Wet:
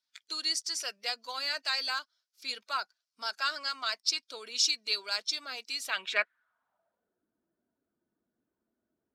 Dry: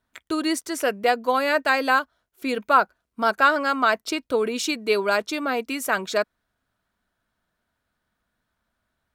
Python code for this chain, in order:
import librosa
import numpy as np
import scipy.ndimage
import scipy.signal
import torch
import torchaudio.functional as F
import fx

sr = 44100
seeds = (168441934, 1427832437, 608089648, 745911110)

y = fx.spec_quant(x, sr, step_db=15)
y = fx.filter_sweep_bandpass(y, sr, from_hz=5100.0, to_hz=340.0, start_s=5.73, end_s=7.21, q=3.7)
y = y * librosa.db_to_amplitude(8.0)